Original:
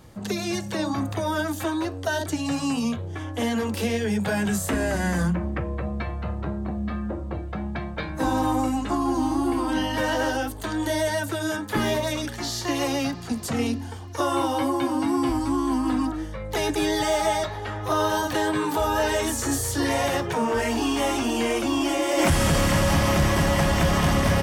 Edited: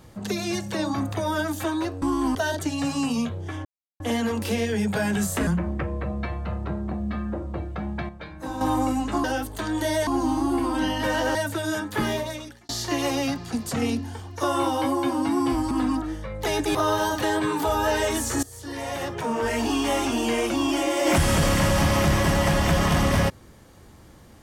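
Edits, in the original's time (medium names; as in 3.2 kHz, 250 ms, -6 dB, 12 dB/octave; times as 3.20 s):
3.32 s: insert silence 0.35 s
4.79–5.24 s: delete
7.86–8.38 s: gain -8.5 dB
10.29–11.12 s: move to 9.01 s
11.71–12.46 s: fade out
15.48–15.81 s: move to 2.02 s
16.85–17.87 s: delete
19.55–20.76 s: fade in, from -20.5 dB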